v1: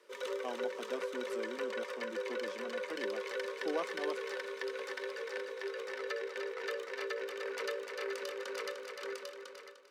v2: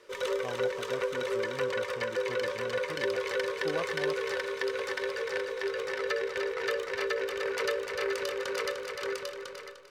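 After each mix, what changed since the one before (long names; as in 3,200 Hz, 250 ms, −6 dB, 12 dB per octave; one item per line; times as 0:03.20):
background +7.5 dB
master: remove Butterworth high-pass 200 Hz 72 dB per octave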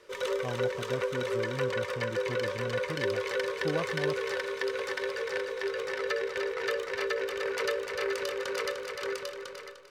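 speech: remove high-pass filter 400 Hz 6 dB per octave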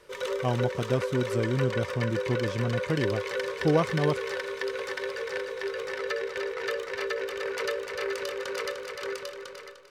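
speech +10.0 dB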